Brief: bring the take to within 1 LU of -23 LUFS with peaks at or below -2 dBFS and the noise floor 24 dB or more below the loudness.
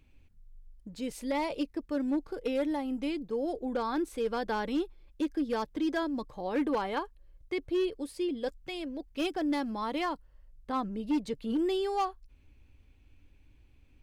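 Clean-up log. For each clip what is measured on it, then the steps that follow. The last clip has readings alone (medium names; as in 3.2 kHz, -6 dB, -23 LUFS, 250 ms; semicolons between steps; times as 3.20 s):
clipped samples 0.8%; clipping level -24.0 dBFS; loudness -33.0 LUFS; peak level -24.0 dBFS; loudness target -23.0 LUFS
-> clip repair -24 dBFS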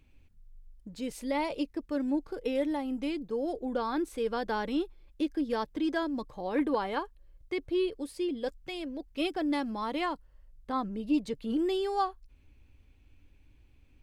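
clipped samples 0.0%; loudness -32.5 LUFS; peak level -18.0 dBFS; loudness target -23.0 LUFS
-> trim +9.5 dB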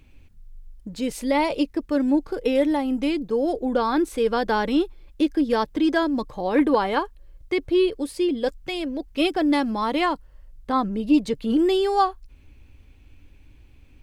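loudness -23.0 LUFS; peak level -8.5 dBFS; noise floor -51 dBFS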